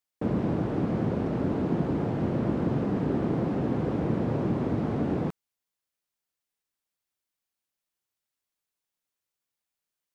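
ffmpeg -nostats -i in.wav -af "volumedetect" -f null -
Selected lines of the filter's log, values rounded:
mean_volume: -30.1 dB
max_volume: -14.3 dB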